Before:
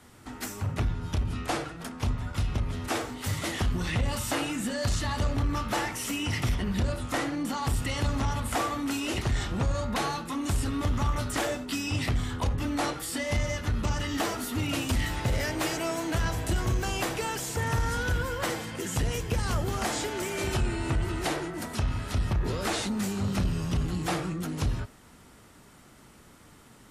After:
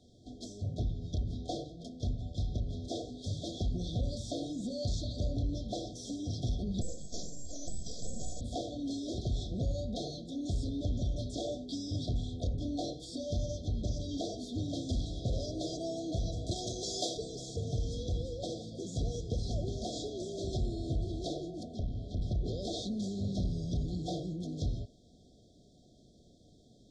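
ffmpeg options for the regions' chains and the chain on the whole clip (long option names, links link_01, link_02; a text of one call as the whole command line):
ffmpeg -i in.wav -filter_complex "[0:a]asettb=1/sr,asplit=3[link_01][link_02][link_03];[link_01]atrim=end=6.814[link_04];[link_02]atrim=start=6.81:end=8.41,asetpts=PTS-STARTPTS,afade=type=in:duration=0.004:curve=qsin,afade=type=out:start_time=1.596:duration=0.004:curve=qsin,lowpass=frequency=3400:width_type=q:width=0.5098,lowpass=frequency=3400:width_type=q:width=0.6013,lowpass=frequency=3400:width_type=q:width=0.9,lowpass=frequency=3400:width_type=q:width=2.563,afreqshift=-4000,aeval=exprs='abs(val(0))':channel_layout=same[link_05];[link_03]atrim=start=8.406[link_06];[link_04][link_05]acrossfade=duration=0.004:curve1=hsin:curve2=qsin[link_07];[link_07][link_06]acrossfade=duration=0.004:curve1=qsin:curve2=hsin,asettb=1/sr,asplit=3[link_08][link_09][link_10];[link_08]atrim=end=16.514[link_11];[link_09]atrim=start=16.51:end=17.17,asetpts=PTS-STARTPTS,afade=type=in:duration=0.004:curve=qsin,afade=type=out:start_time=0.656:duration=0.004:curve=qsin,highpass=frequency=690:poles=1,highshelf=frequency=4500:gain=6.5,acontrast=74[link_12];[link_10]atrim=start=17.166[link_13];[link_11][link_12]acrossfade=duration=0.004:curve1=hsin:curve2=qsin[link_14];[link_14][link_13]acrossfade=duration=0.004:curve1=qsin:curve2=hsin,asettb=1/sr,asplit=3[link_15][link_16][link_17];[link_15]atrim=end=21.634[link_18];[link_16]atrim=start=21.63:end=22.22,asetpts=PTS-STARTPTS,afade=type=in:duration=0.004:curve=qsin,afade=type=out:start_time=0.586:duration=0.004:curve=qsin,lowpass=11000,highshelf=frequency=2600:gain=-11,aeval=exprs='clip(val(0),-1,0.0355)':channel_layout=same[link_19];[link_17]atrim=start=22.216[link_20];[link_18][link_19]acrossfade=duration=0.004:curve1=hsin:curve2=qsin[link_21];[link_21][link_20]acrossfade=duration=0.004:curve1=qsin:curve2=hsin,lowpass=frequency=6000:width=0.5412,lowpass=frequency=6000:width=1.3066,afftfilt=real='re*(1-between(b*sr/4096,750,3200))':imag='im*(1-between(b*sr/4096,750,3200))':win_size=4096:overlap=0.75,volume=-5.5dB" out.wav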